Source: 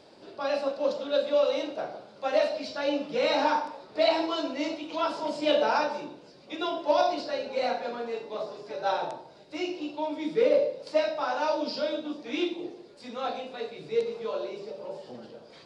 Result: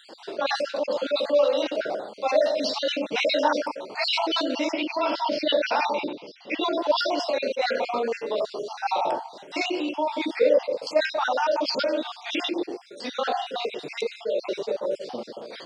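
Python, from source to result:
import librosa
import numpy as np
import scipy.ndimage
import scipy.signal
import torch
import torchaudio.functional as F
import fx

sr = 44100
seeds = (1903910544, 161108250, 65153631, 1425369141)

p1 = fx.spec_dropout(x, sr, seeds[0], share_pct=45)
p2 = fx.curve_eq(p1, sr, hz=(370.0, 890.0, 1600.0, 2200.0, 5500.0, 7800.0), db=(0, -3, -5, 5, -4, -22), at=(4.72, 6.64))
p3 = fx.over_compress(p2, sr, threshold_db=-37.0, ratio=-1.0)
p4 = p2 + F.gain(torch.from_numpy(p3), 1.0).numpy()
p5 = scipy.signal.sosfilt(scipy.signal.butter(2, 280.0, 'highpass', fs=sr, output='sos'), p4)
p6 = fx.attack_slew(p5, sr, db_per_s=510.0)
y = F.gain(torch.from_numpy(p6), 3.5).numpy()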